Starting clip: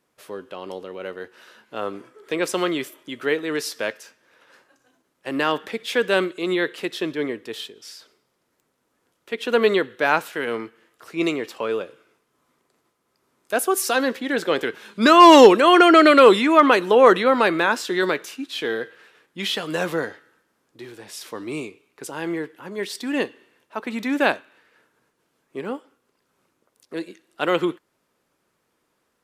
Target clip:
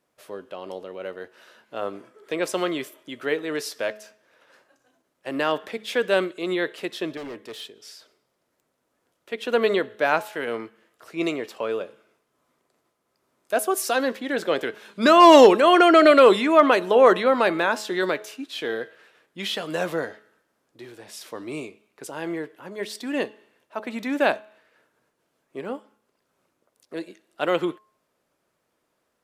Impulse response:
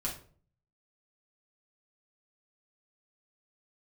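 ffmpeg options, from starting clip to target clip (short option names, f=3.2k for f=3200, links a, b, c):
-filter_complex "[0:a]asettb=1/sr,asplit=3[a][b][c];[a]atrim=end=7.174[d];[b]atrim=start=7.17:end=7.61,asetpts=PTS-STARTPTS,afade=t=in:d=0.004:c=qsin,afade=t=out:st=0.436:d=0.004:c=qsin,asoftclip=type=hard:threshold=-30.5dB[e];[c]atrim=start=7.606[f];[d][e]acrossfade=d=0.004:c1=hsin:c2=qsin[g];[g][f]acrossfade=d=0.004:c1=qsin:c2=hsin,equalizer=f=630:t=o:w=0.43:g=6,bandreject=f=213.1:t=h:w=4,bandreject=f=426.2:t=h:w=4,bandreject=f=639.3:t=h:w=4,bandreject=f=852.4:t=h:w=4,bandreject=f=1.0655k:t=h:w=4,volume=-3.5dB"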